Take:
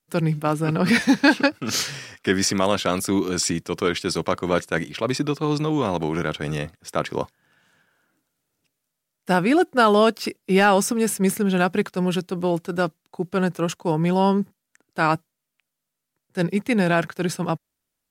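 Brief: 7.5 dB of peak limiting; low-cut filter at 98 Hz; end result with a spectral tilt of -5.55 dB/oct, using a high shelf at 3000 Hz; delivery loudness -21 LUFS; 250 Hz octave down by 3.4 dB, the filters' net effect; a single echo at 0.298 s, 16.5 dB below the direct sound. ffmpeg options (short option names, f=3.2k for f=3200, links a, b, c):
-af "highpass=98,equalizer=f=250:t=o:g=-4.5,highshelf=f=3k:g=-9,alimiter=limit=-13.5dB:level=0:latency=1,aecho=1:1:298:0.15,volume=6dB"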